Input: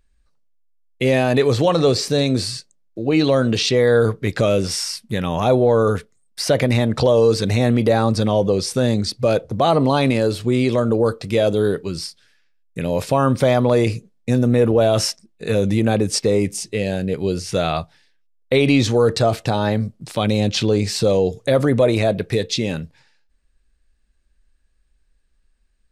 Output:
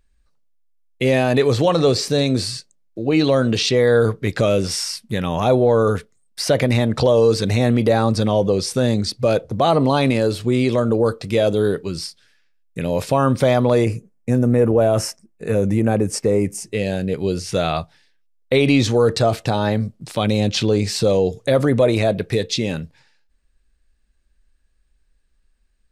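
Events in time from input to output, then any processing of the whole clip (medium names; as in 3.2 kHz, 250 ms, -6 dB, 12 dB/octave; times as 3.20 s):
13.84–16.73 s: peaking EQ 3.8 kHz -14.5 dB 0.9 oct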